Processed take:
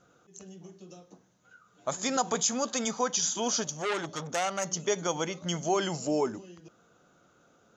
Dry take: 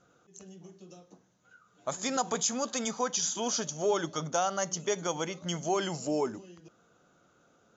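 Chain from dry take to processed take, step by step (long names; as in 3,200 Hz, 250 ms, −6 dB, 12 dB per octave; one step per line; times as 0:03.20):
0:03.64–0:04.65: saturating transformer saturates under 2,700 Hz
level +2 dB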